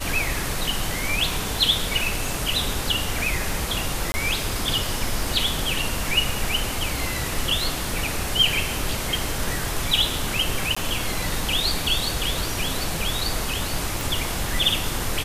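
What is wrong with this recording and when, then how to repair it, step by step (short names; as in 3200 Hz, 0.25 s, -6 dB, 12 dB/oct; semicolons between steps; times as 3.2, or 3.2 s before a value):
4.12–4.14 gap 20 ms
10.75–10.77 gap 15 ms
14.01 pop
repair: de-click; interpolate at 4.12, 20 ms; interpolate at 10.75, 15 ms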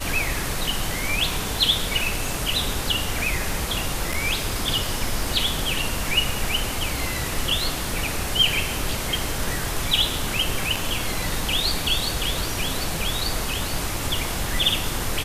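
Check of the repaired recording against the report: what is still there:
none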